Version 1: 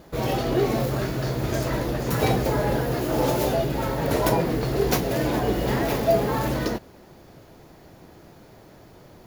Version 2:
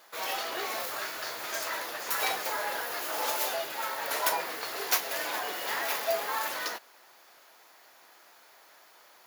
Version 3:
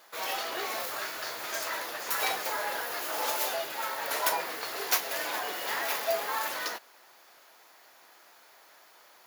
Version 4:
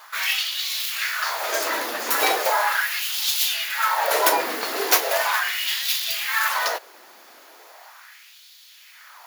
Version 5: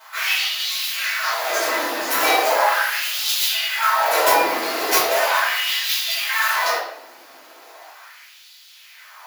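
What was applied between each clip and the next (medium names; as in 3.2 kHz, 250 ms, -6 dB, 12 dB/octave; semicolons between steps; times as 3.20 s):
Chebyshev high-pass 1.2 kHz, order 2; treble shelf 7.4 kHz +4 dB
no audible change
LFO high-pass sine 0.38 Hz 230–3600 Hz; trim +8.5 dB
wavefolder -9 dBFS; reverberation RT60 0.70 s, pre-delay 3 ms, DRR -11 dB; trim -8 dB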